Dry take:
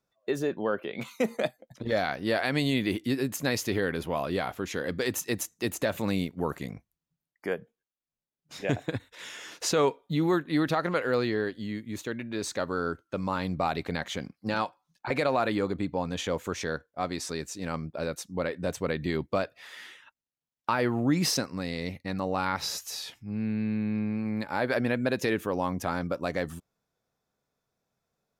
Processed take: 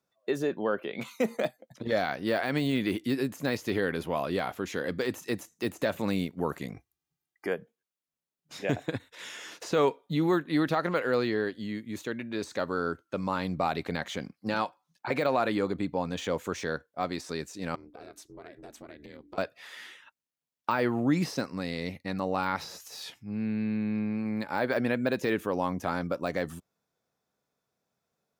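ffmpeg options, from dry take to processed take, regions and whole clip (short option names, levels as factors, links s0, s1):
-filter_complex "[0:a]asettb=1/sr,asplit=3[s0][s1][s2];[s0]atrim=end=6.744[s3];[s1]atrim=start=6.74:end=7.47,asetpts=PTS-STARTPTS,afade=t=in:d=0.004:c=qsin,afade=t=out:st=0.726:d=0.004:c=qsin,bandreject=f=480:w=6.2,aecho=1:1:2.5:0.82,atrim=end_sample=32193[s4];[s2]atrim=start=7.466[s5];[s3][s4]acrossfade=d=0.004:c1=hsin:c2=qsin[s6];[s6][s5]acrossfade=d=0.004:c1=qsin:c2=hsin,asettb=1/sr,asplit=3[s7][s8][s9];[s7]atrim=end=17.754[s10];[s8]atrim=start=17.75:end=19.38,asetpts=PTS-STARTPTS,afade=t=in:d=0.004:c=qsin,afade=t=out:st=1.626:d=0.004:c=qsin,bandreject=f=50:t=h:w=6,bandreject=f=100:t=h:w=6,bandreject=f=150:t=h:w=6,bandreject=f=200:t=h:w=6,aeval=exprs='val(0)*sin(2*PI*140*n/s)':c=same,acompressor=threshold=0.00708:ratio=5:attack=3.2:release=140:knee=1:detection=peak[s11];[s9]atrim=start=19.376[s12];[s10][s11]acrossfade=d=0.004:c1=hsin:c2=qsin[s13];[s13][s12]acrossfade=d=0.004:c1=qsin:c2=hsin,deesser=0.95,highpass=81,equalizer=f=110:t=o:w=0.77:g=-3"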